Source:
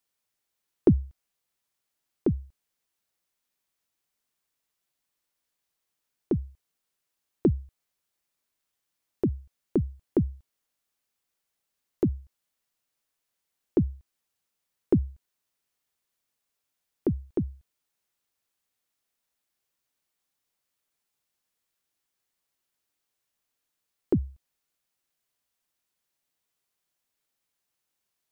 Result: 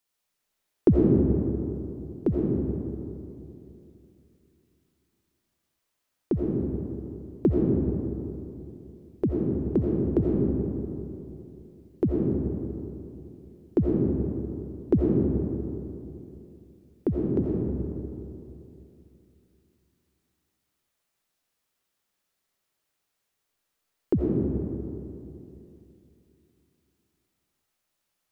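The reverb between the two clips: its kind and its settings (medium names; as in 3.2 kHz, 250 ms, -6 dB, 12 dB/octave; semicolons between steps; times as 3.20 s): algorithmic reverb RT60 2.9 s, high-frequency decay 0.4×, pre-delay 45 ms, DRR -3 dB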